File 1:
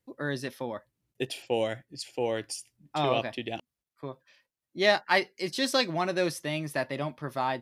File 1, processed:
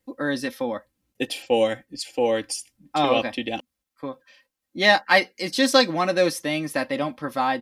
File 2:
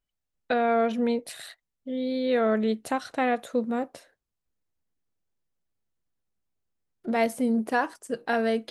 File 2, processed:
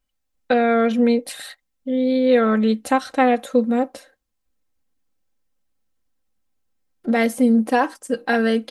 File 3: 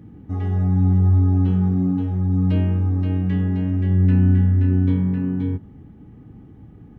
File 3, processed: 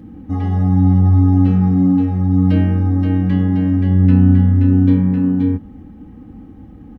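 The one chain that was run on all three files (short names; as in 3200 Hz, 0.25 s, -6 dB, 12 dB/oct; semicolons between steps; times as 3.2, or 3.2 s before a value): comb 3.8 ms, depth 64%; gain +5.5 dB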